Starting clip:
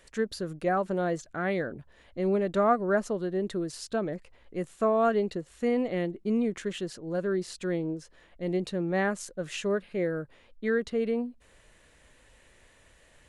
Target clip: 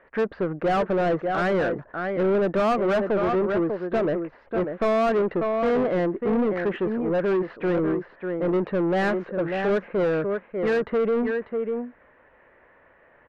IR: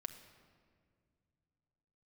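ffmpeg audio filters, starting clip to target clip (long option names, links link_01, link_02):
-filter_complex "[0:a]agate=range=-8dB:threshold=-52dB:ratio=16:detection=peak,lowpass=frequency=1900:width=0.5412,lowpass=frequency=1900:width=1.3066,asplit=2[link_01][link_02];[link_02]alimiter=limit=-19.5dB:level=0:latency=1:release=85,volume=-1dB[link_03];[link_01][link_03]amix=inputs=2:normalize=0,aecho=1:1:594:0.316,asplit=2[link_04][link_05];[link_05]highpass=frequency=720:poles=1,volume=25dB,asoftclip=type=tanh:threshold=-9.5dB[link_06];[link_04][link_06]amix=inputs=2:normalize=0,lowpass=frequency=1400:poles=1,volume=-6dB,volume=-5dB"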